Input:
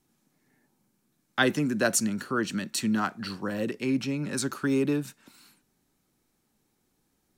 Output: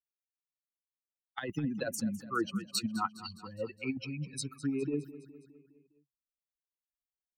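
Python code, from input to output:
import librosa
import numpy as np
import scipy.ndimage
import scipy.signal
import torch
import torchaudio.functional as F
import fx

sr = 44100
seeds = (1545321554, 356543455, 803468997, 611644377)

y = fx.bin_expand(x, sr, power=3.0)
y = fx.over_compress(y, sr, threshold_db=-31.0, ratio=-0.5)
y = fx.echo_feedback(y, sr, ms=206, feedback_pct=55, wet_db=-16)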